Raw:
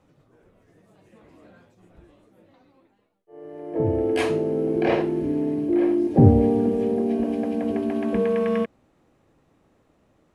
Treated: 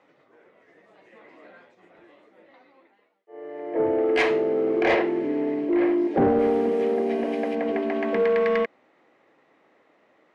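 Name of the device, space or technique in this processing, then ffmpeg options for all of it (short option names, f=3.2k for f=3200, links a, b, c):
intercom: -filter_complex "[0:a]asettb=1/sr,asplit=3[a][b][c];[a]atrim=end=6.394[d];[b]atrim=start=6.39:end=7.55,asetpts=PTS-STARTPTS,afade=t=in:d=0.004:c=qsin,afade=t=out:st=1.156:d=0.004:c=qsin,aemphasis=mode=production:type=50fm[e];[c]atrim=start=7.546[f];[d][e]acrossfade=d=0.004:c1=hsin:c2=qsin[g];[g][f]acrossfade=d=0.004:c1=qsin:c2=hsin,highpass=410,lowpass=3.8k,equalizer=f=2k:t=o:w=0.29:g=9,asoftclip=type=tanh:threshold=-18dB,volume=5dB"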